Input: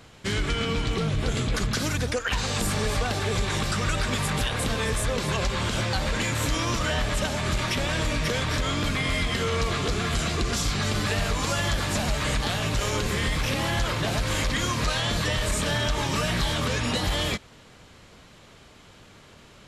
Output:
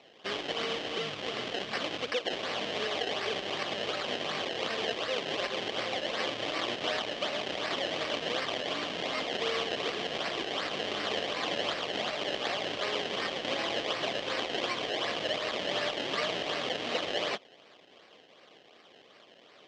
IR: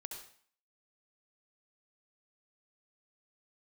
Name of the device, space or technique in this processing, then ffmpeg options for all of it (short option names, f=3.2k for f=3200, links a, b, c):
circuit-bent sampling toy: -af "acrusher=samples=26:mix=1:aa=0.000001:lfo=1:lforange=26:lforate=2.7,highpass=480,equalizer=f=920:t=q:w=4:g=-8,equalizer=f=1.4k:t=q:w=4:g=-6,equalizer=f=3.1k:t=q:w=4:g=10,lowpass=f=5.4k:w=0.5412,lowpass=f=5.4k:w=1.3066,volume=-1dB"